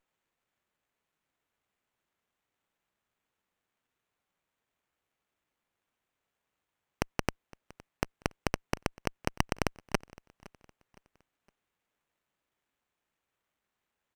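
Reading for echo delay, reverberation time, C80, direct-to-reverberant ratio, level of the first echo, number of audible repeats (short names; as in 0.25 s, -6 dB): 0.513 s, none, none, none, -22.5 dB, 2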